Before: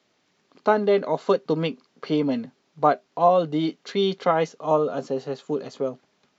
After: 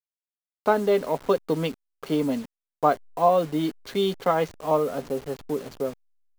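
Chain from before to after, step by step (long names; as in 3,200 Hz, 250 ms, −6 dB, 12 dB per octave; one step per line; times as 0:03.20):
hold until the input has moved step −36.5 dBFS
level −1.5 dB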